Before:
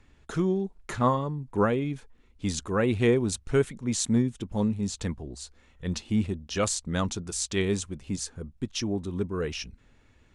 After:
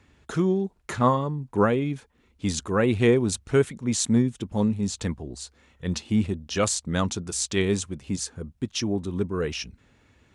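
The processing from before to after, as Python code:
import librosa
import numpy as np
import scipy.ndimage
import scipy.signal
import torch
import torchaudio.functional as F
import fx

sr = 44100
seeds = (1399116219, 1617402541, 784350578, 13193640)

y = scipy.signal.sosfilt(scipy.signal.butter(2, 63.0, 'highpass', fs=sr, output='sos'), x)
y = y * librosa.db_to_amplitude(3.0)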